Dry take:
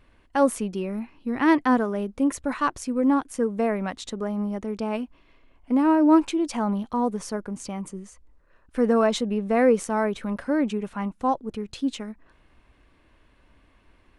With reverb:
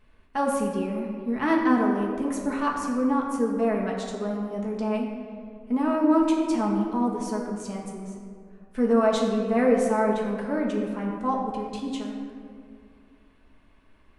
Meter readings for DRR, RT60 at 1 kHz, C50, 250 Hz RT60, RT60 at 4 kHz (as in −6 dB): −2.0 dB, 2.0 s, 3.0 dB, 2.6 s, 1.1 s